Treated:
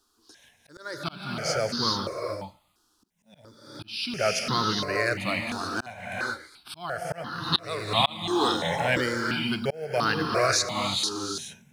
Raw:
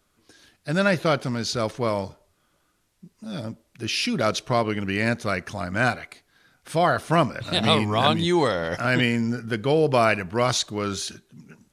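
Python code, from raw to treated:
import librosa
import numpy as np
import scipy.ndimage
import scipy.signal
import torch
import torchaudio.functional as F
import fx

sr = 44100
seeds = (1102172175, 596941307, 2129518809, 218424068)

y = fx.low_shelf(x, sr, hz=130.0, db=-8.5)
y = fx.rev_gated(y, sr, seeds[0], gate_ms=460, shape='rising', drr_db=3.0)
y = fx.auto_swell(y, sr, attack_ms=454.0)
y = fx.quant_companded(y, sr, bits=8)
y = fx.peak_eq(y, sr, hz=4700.0, db=8.5, octaves=0.93)
y = fx.phaser_held(y, sr, hz=2.9, low_hz=580.0, high_hz=2300.0)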